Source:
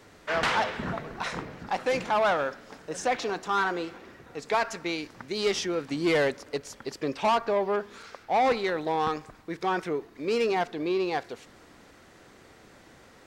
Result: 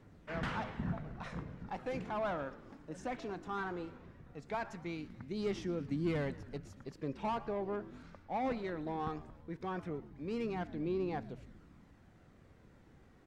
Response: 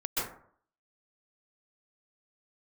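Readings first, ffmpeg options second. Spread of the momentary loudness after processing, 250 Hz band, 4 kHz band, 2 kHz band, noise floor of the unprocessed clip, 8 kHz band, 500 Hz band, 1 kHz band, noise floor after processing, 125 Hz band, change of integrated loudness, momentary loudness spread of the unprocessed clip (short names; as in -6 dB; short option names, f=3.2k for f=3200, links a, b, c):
12 LU, -6.0 dB, -18.5 dB, -15.0 dB, -54 dBFS, -20.5 dB, -12.0 dB, -13.5 dB, -62 dBFS, -0.5 dB, -11.5 dB, 14 LU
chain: -filter_complex "[0:a]asplit=6[a][b][c][d][e][f];[b]adelay=115,afreqshift=-80,volume=-19dB[g];[c]adelay=230,afreqshift=-160,volume=-23.4dB[h];[d]adelay=345,afreqshift=-240,volume=-27.9dB[i];[e]adelay=460,afreqshift=-320,volume=-32.3dB[j];[f]adelay=575,afreqshift=-400,volume=-36.7dB[k];[a][g][h][i][j][k]amix=inputs=6:normalize=0,aphaser=in_gain=1:out_gain=1:delay=3.6:decay=0.24:speed=0.18:type=triangular,firequalizer=gain_entry='entry(170,0);entry(410,-11);entry(4600,-19)':delay=0.05:min_phase=1,volume=-1.5dB"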